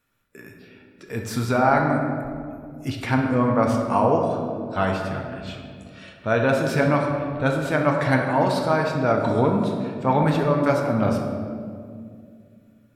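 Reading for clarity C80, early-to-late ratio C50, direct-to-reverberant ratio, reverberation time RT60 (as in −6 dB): 5.0 dB, 3.5 dB, 1.0 dB, 2.3 s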